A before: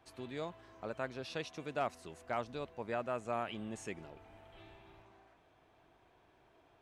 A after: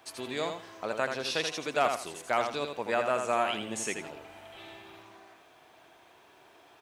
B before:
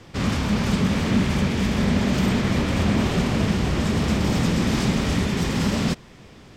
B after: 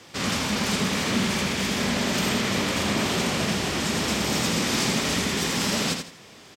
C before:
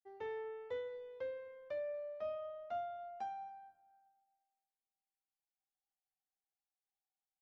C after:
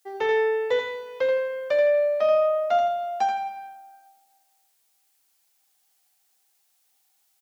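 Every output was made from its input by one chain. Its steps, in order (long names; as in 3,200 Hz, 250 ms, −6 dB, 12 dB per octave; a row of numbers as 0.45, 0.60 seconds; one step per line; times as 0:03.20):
high-pass filter 360 Hz 6 dB per octave
high-shelf EQ 3,400 Hz +8.5 dB
repeating echo 82 ms, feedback 26%, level −6 dB
normalise the peak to −12 dBFS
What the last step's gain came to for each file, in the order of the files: +9.0, −0.5, +20.0 decibels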